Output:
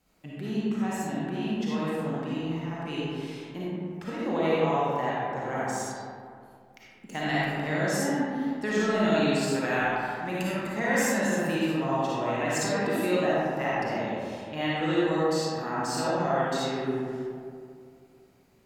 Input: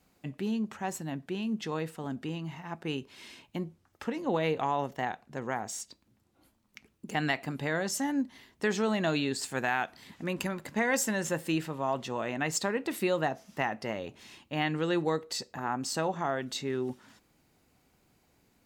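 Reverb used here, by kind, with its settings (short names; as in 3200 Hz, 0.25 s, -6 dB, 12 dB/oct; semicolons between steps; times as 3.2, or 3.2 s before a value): digital reverb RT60 2.3 s, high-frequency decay 0.4×, pre-delay 15 ms, DRR -8 dB; gain -4.5 dB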